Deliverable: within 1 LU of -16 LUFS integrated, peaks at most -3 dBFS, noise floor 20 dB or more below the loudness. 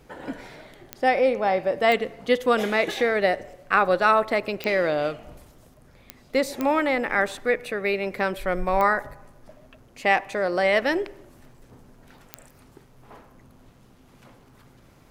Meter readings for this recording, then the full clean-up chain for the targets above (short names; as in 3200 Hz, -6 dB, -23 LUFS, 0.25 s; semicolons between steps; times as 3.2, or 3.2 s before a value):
clicks 7; loudness -23.0 LUFS; peak -6.0 dBFS; loudness target -16.0 LUFS
-> de-click; gain +7 dB; limiter -3 dBFS